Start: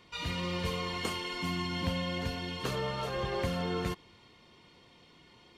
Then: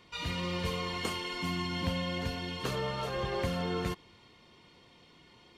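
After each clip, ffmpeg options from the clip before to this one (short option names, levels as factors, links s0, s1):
-af anull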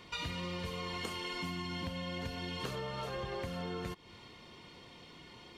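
-af "acompressor=threshold=0.00891:ratio=12,volume=1.78"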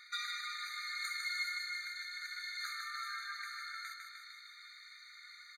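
-af "aecho=1:1:152|304|456|608|760|912|1064|1216:0.596|0.351|0.207|0.122|0.0722|0.0426|0.0251|0.0148,aeval=exprs='0.0562*(cos(1*acos(clip(val(0)/0.0562,-1,1)))-cos(1*PI/2))+0.00178*(cos(8*acos(clip(val(0)/0.0562,-1,1)))-cos(8*PI/2))':c=same,afftfilt=real='re*eq(mod(floor(b*sr/1024/1200),2),1)':imag='im*eq(mod(floor(b*sr/1024/1200),2),1)':win_size=1024:overlap=0.75,volume=1.58"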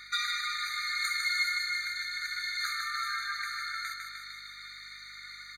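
-af "aeval=exprs='val(0)+0.000158*(sin(2*PI*50*n/s)+sin(2*PI*2*50*n/s)/2+sin(2*PI*3*50*n/s)/3+sin(2*PI*4*50*n/s)/4+sin(2*PI*5*50*n/s)/5)':c=same,volume=2.66"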